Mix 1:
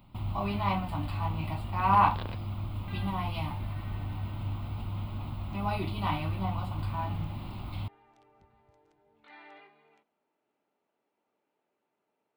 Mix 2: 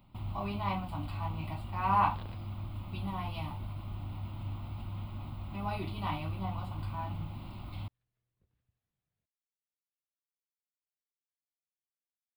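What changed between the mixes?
speech -4.5 dB; first sound: muted; second sound -10.5 dB

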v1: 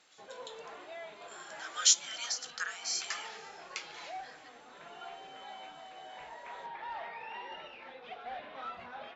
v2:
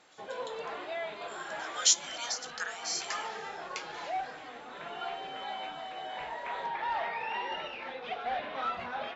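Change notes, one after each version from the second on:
background +8.5 dB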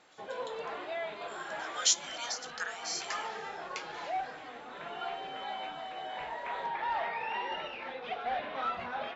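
master: add treble shelf 5 kHz -4.5 dB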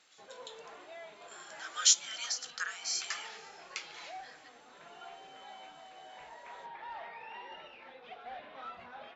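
background -11.5 dB; master: add treble shelf 5 kHz +4.5 dB

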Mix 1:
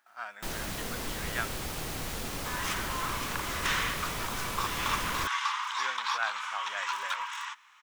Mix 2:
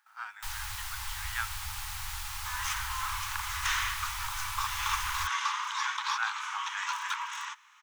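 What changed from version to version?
second sound: add peaking EQ 6.3 kHz +5.5 dB 0.21 oct; master: add Chebyshev band-stop 100–830 Hz, order 5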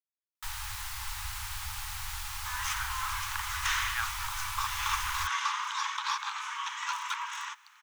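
speech: entry +2.60 s

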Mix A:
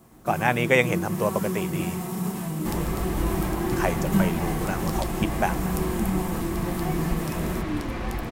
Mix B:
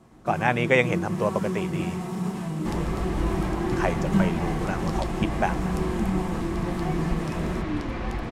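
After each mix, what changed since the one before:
master: add distance through air 70 m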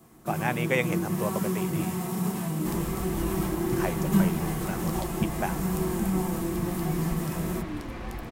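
speech -6.5 dB; second sound -6.5 dB; master: remove distance through air 70 m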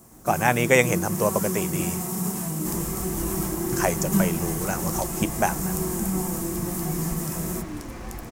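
speech +8.5 dB; master: add resonant high shelf 4.8 kHz +8 dB, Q 1.5

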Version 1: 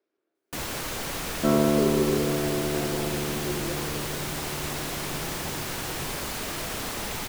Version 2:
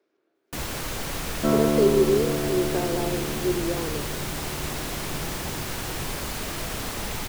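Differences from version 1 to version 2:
speech +8.5 dB; first sound: add bass shelf 130 Hz +7 dB

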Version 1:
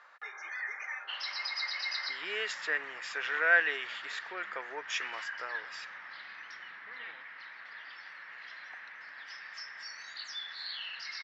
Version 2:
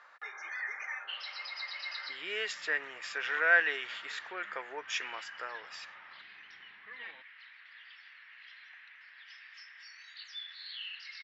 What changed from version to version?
first sound: add band-pass filter 2.9 kHz, Q 2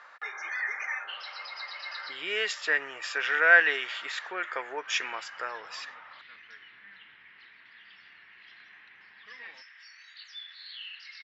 speech +6.0 dB; second sound: entry +2.40 s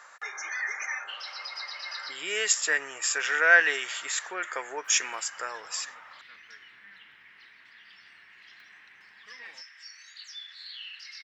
master: remove low-pass 4.3 kHz 24 dB/octave

